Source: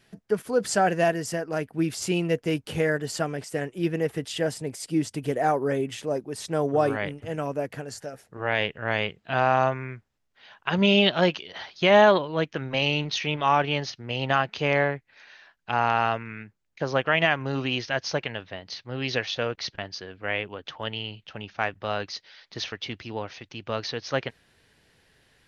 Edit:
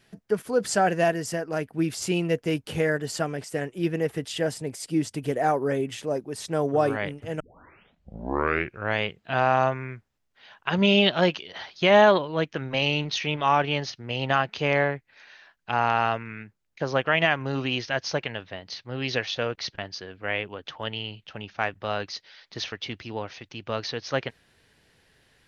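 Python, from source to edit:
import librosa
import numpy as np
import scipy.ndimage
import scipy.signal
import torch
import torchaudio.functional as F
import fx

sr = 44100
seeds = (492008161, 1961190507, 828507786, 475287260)

y = fx.edit(x, sr, fx.tape_start(start_s=7.4, length_s=1.56), tone=tone)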